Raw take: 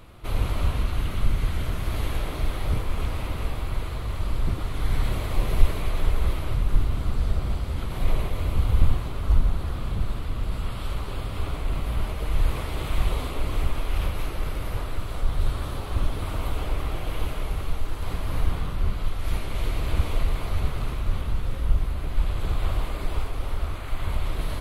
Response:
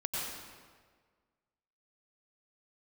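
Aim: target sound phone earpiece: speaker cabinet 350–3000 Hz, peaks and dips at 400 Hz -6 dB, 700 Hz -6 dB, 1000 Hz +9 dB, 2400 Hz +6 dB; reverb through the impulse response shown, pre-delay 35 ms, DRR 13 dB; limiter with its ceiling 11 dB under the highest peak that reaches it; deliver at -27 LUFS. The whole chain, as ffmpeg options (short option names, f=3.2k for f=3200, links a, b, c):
-filter_complex "[0:a]alimiter=limit=-14dB:level=0:latency=1,asplit=2[a][b];[1:a]atrim=start_sample=2205,adelay=35[c];[b][c]afir=irnorm=-1:irlink=0,volume=-17.5dB[d];[a][d]amix=inputs=2:normalize=0,highpass=350,equalizer=f=400:t=q:w=4:g=-6,equalizer=f=700:t=q:w=4:g=-6,equalizer=f=1k:t=q:w=4:g=9,equalizer=f=2.4k:t=q:w=4:g=6,lowpass=f=3k:w=0.5412,lowpass=f=3k:w=1.3066,volume=9.5dB"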